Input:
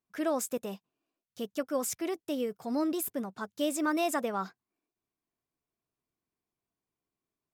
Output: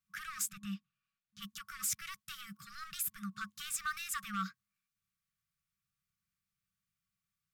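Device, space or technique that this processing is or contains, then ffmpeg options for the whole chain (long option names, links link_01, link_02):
limiter into clipper: -filter_complex "[0:a]alimiter=level_in=1.5dB:limit=-24dB:level=0:latency=1:release=60,volume=-1.5dB,asoftclip=type=hard:threshold=-30dB,asplit=3[link_01][link_02][link_03];[link_01]afade=type=out:start_time=0.49:duration=0.02[link_04];[link_02]aemphasis=mode=reproduction:type=50fm,afade=type=in:start_time=0.49:duration=0.02,afade=type=out:start_time=1.41:duration=0.02[link_05];[link_03]afade=type=in:start_time=1.41:duration=0.02[link_06];[link_04][link_05][link_06]amix=inputs=3:normalize=0,afftfilt=real='re*(1-between(b*sr/4096,210,1100))':imag='im*(1-between(b*sr/4096,210,1100))':win_size=4096:overlap=0.75,volume=2.5dB"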